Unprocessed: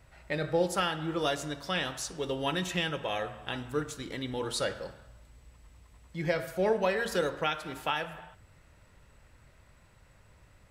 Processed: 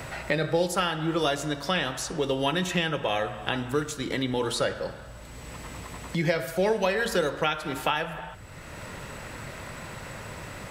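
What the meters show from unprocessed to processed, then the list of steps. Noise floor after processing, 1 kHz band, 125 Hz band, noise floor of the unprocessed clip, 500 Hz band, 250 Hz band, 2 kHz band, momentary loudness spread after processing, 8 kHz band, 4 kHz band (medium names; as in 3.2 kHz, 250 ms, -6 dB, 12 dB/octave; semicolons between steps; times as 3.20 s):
-43 dBFS, +4.5 dB, +6.0 dB, -60 dBFS, +4.5 dB, +6.0 dB, +5.0 dB, 15 LU, +4.5 dB, +4.5 dB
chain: three bands compressed up and down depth 70%; trim +5 dB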